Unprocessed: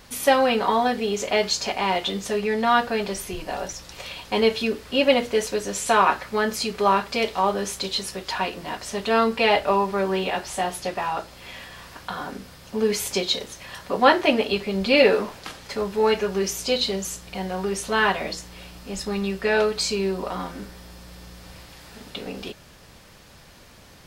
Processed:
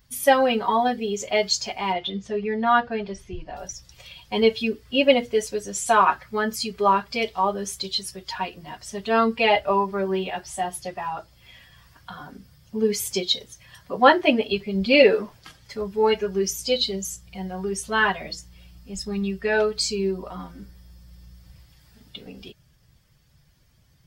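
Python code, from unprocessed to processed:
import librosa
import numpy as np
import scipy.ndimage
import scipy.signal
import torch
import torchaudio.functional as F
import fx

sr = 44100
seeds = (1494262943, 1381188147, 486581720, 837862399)

y = fx.bin_expand(x, sr, power=1.5)
y = fx.air_absorb(y, sr, metres=160.0, at=(1.92, 3.55), fade=0.02)
y = F.gain(torch.from_numpy(y), 3.0).numpy()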